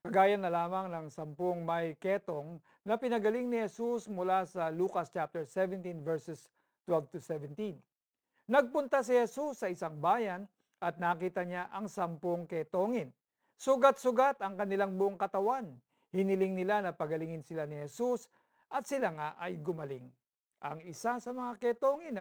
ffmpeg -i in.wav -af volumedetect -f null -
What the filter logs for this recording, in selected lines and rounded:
mean_volume: -34.3 dB
max_volume: -12.6 dB